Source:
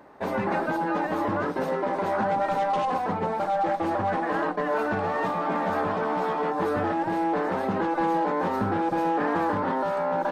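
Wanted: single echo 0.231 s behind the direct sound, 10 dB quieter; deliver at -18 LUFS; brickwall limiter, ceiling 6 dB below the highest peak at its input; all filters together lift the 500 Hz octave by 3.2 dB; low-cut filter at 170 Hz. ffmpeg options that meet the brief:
-af "highpass=170,equalizer=f=500:t=o:g=4,alimiter=limit=-19dB:level=0:latency=1,aecho=1:1:231:0.316,volume=9dB"

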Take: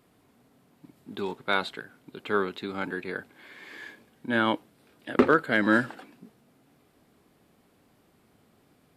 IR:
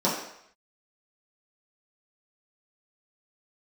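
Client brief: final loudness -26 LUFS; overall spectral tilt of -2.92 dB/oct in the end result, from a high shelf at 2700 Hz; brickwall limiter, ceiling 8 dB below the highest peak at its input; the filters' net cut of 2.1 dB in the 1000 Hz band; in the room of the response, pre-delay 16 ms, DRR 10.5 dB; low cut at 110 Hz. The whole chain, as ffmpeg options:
-filter_complex "[0:a]highpass=110,equalizer=f=1k:t=o:g=-4,highshelf=f=2.7k:g=4,alimiter=limit=-15dB:level=0:latency=1,asplit=2[a][b];[1:a]atrim=start_sample=2205,adelay=16[c];[b][c]afir=irnorm=-1:irlink=0,volume=-24.5dB[d];[a][d]amix=inputs=2:normalize=0,volume=4.5dB"

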